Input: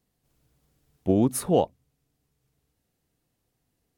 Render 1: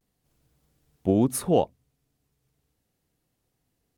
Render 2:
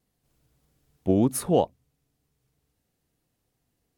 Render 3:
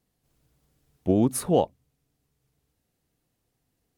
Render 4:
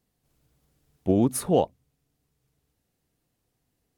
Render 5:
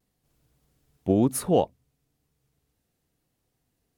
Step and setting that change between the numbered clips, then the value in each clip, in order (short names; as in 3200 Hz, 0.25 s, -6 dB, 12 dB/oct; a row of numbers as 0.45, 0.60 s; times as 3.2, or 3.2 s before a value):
vibrato, rate: 0.39, 3.2, 7.1, 16, 0.97 Hz